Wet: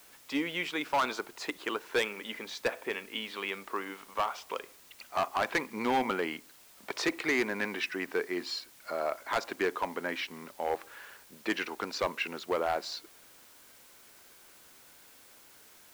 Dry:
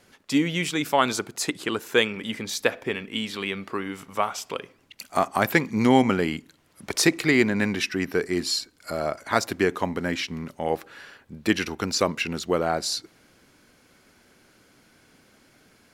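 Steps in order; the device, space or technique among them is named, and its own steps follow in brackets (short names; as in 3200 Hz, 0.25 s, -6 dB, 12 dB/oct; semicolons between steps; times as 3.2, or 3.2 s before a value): drive-through speaker (BPF 400–3300 Hz; bell 980 Hz +4 dB 0.38 oct; hard clip -18.5 dBFS, distortion -9 dB; white noise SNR 22 dB); gain -4 dB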